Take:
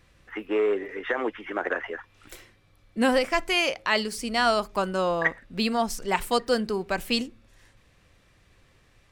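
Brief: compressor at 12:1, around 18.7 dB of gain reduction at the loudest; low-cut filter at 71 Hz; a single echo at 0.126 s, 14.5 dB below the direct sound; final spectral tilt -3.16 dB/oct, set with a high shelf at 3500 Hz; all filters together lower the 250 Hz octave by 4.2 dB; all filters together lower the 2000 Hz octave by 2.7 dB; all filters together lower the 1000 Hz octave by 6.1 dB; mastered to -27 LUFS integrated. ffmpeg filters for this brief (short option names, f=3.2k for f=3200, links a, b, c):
-af "highpass=71,equalizer=f=250:t=o:g=-4.5,equalizer=f=1k:t=o:g=-8.5,equalizer=f=2k:t=o:g=-3.5,highshelf=f=3.5k:g=9,acompressor=threshold=-39dB:ratio=12,aecho=1:1:126:0.188,volume=16dB"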